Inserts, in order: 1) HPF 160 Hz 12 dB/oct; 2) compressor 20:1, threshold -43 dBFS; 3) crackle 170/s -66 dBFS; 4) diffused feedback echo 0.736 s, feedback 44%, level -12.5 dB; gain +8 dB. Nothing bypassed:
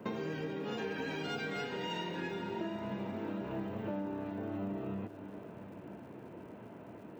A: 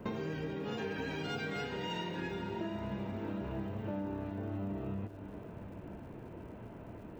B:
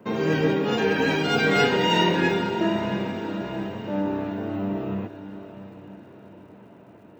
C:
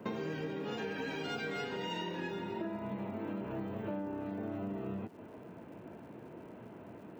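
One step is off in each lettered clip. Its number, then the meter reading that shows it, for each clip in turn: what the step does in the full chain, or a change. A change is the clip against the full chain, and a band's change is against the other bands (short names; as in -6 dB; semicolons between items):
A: 1, 125 Hz band +4.0 dB; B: 2, mean gain reduction 9.0 dB; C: 4, echo-to-direct -11.5 dB to none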